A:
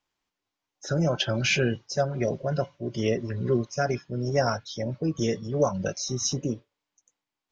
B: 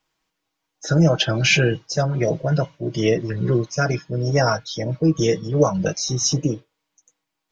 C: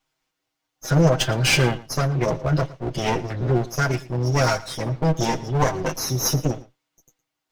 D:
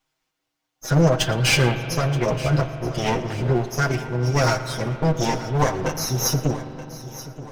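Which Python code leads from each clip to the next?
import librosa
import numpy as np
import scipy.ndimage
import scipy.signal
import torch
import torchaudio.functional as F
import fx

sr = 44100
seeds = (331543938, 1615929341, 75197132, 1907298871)

y1 = x + 0.6 * np.pad(x, (int(6.3 * sr / 1000.0), 0))[:len(x)]
y1 = y1 * librosa.db_to_amplitude(6.0)
y2 = fx.lower_of_two(y1, sr, delay_ms=7.7)
y2 = y2 + 10.0 ** (-19.0 / 20.0) * np.pad(y2, (int(113 * sr / 1000.0), 0))[:len(y2)]
y3 = fx.echo_feedback(y2, sr, ms=926, feedback_pct=43, wet_db=-15.5)
y3 = fx.rev_spring(y3, sr, rt60_s=3.6, pass_ms=(41,), chirp_ms=40, drr_db=10.5)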